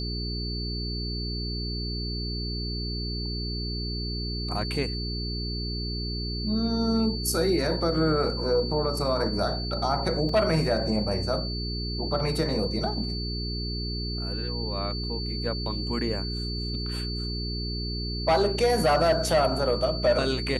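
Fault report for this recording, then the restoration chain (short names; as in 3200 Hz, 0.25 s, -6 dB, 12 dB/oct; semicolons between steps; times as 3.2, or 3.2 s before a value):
hum 60 Hz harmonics 7 -32 dBFS
tone 4500 Hz -34 dBFS
10.29 gap 3.2 ms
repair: notch 4500 Hz, Q 30; de-hum 60 Hz, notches 7; interpolate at 10.29, 3.2 ms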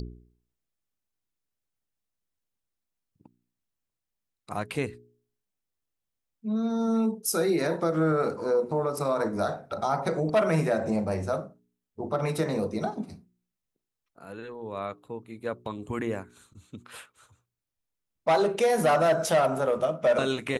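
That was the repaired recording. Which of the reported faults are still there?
none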